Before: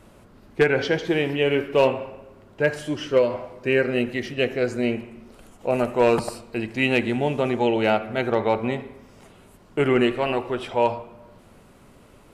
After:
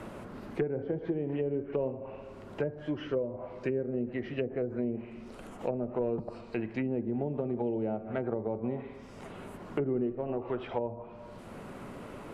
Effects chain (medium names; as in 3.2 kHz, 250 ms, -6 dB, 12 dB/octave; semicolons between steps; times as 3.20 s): low-pass that closes with the level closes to 440 Hz, closed at -18.5 dBFS; three bands compressed up and down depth 70%; trim -8 dB